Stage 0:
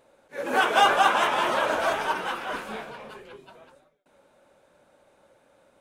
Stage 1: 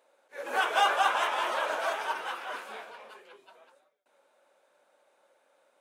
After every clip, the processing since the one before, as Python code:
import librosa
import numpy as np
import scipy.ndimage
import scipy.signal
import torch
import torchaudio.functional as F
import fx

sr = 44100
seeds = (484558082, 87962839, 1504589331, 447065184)

y = scipy.signal.sosfilt(scipy.signal.butter(2, 500.0, 'highpass', fs=sr, output='sos'), x)
y = y * librosa.db_to_amplitude(-5.0)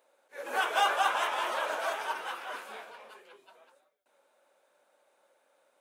y = fx.high_shelf(x, sr, hz=9700.0, db=6.0)
y = y * librosa.db_to_amplitude(-2.0)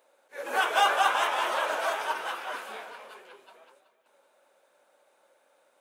y = fx.echo_feedback(x, sr, ms=376, feedback_pct=28, wet_db=-15.5)
y = y * librosa.db_to_amplitude(3.5)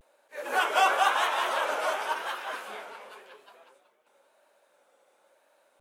y = fx.vibrato(x, sr, rate_hz=0.95, depth_cents=89.0)